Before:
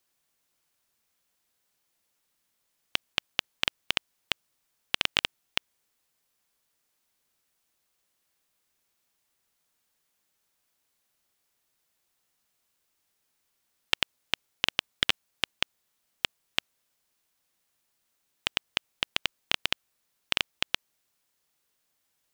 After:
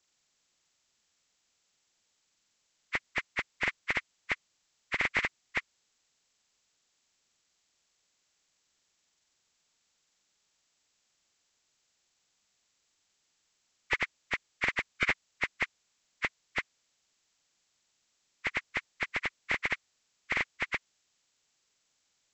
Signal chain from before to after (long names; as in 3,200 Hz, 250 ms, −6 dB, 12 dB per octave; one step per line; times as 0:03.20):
hearing-aid frequency compression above 1,000 Hz 1.5 to 1